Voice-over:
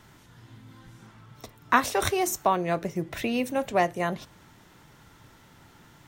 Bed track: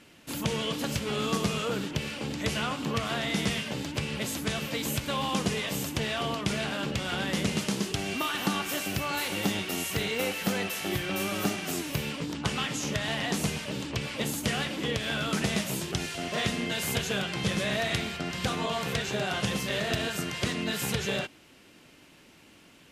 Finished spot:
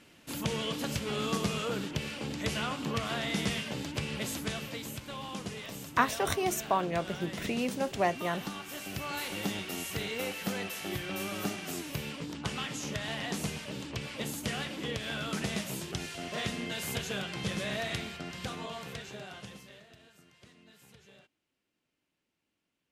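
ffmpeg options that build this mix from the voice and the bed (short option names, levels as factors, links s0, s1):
-filter_complex "[0:a]adelay=4250,volume=0.562[s0];[1:a]volume=1.33,afade=t=out:st=4.33:d=0.61:silence=0.398107,afade=t=in:st=8.69:d=0.42:silence=0.530884,afade=t=out:st=17.82:d=2.06:silence=0.0749894[s1];[s0][s1]amix=inputs=2:normalize=0"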